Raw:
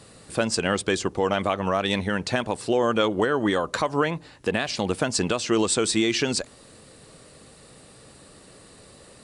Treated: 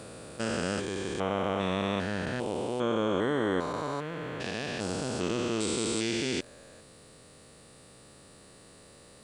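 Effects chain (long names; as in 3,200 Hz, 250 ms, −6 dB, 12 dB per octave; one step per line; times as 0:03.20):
spectrum averaged block by block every 400 ms
bit-depth reduction 12 bits, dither none
level −3 dB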